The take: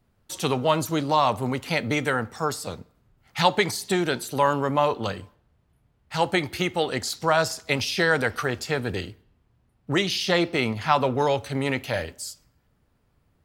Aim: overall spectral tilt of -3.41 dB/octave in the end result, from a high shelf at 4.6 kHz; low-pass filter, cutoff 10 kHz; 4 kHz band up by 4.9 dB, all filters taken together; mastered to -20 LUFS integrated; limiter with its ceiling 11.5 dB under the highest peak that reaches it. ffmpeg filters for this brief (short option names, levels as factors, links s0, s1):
-af "lowpass=10000,equalizer=f=4000:t=o:g=3,highshelf=f=4600:g=6.5,volume=2.11,alimiter=limit=0.422:level=0:latency=1"